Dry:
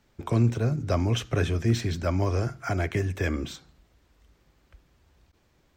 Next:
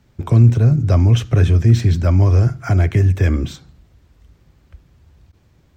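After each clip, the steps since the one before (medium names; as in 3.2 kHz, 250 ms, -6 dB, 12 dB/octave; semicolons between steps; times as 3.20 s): peaking EQ 100 Hz +12 dB 2.2 oct; in parallel at -2 dB: peak limiter -11.5 dBFS, peak gain reduction 9 dB; on the sum: trim -1 dB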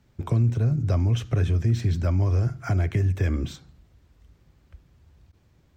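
compression 2:1, threshold -15 dBFS, peak gain reduction 5.5 dB; trim -6 dB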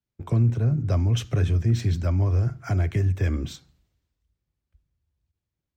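three bands expanded up and down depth 70%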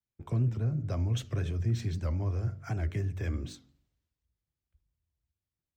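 de-hum 47.03 Hz, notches 14; warped record 78 rpm, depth 160 cents; trim -7.5 dB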